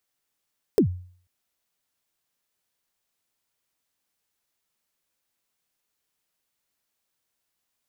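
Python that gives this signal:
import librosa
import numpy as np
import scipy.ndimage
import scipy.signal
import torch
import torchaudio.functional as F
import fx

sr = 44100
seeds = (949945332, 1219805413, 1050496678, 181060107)

y = fx.drum_kick(sr, seeds[0], length_s=0.49, level_db=-11.5, start_hz=480.0, end_hz=90.0, sweep_ms=93.0, decay_s=0.5, click=True)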